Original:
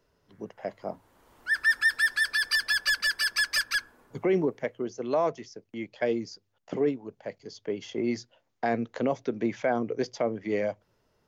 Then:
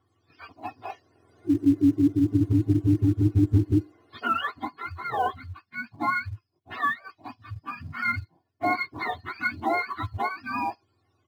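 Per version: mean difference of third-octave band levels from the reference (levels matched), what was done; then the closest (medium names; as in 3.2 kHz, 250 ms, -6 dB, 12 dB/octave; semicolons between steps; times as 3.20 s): 13.5 dB: spectrum inverted on a logarithmic axis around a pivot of 710 Hz; low-pass 7 kHz; comb 2.8 ms, depth 66%; in parallel at -12 dB: short-mantissa float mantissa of 2-bit; on the sum: trim -1.5 dB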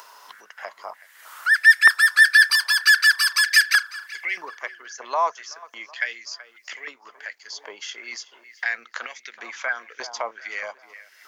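10.0 dB: treble shelf 3.6 kHz +11 dB; in parallel at +3 dB: upward compressor, threshold -25 dBFS; on the sum: tape echo 377 ms, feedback 52%, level -15 dB, low-pass 3.5 kHz; step-sequenced high-pass 3.2 Hz 970–2000 Hz; trim -7.5 dB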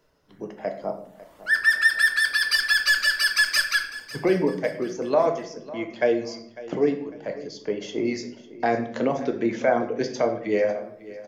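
4.0 dB: reverb removal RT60 0.75 s; bass shelf 140 Hz -5 dB; on a send: feedback delay 550 ms, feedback 37%, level -17.5 dB; on the sum: simulated room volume 130 m³, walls mixed, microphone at 0.52 m; trim +4.5 dB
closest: third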